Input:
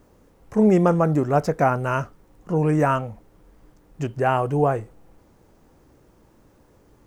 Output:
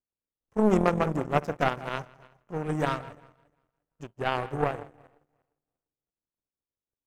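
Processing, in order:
feedback delay that plays each chunk backwards 175 ms, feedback 59%, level −12 dB
repeating echo 163 ms, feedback 31%, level −12.5 dB
power curve on the samples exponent 2

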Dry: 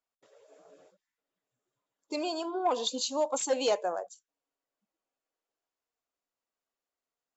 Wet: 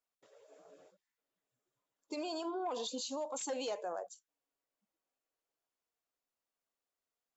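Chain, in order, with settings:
brickwall limiter −29 dBFS, peak gain reduction 9.5 dB
level −2.5 dB

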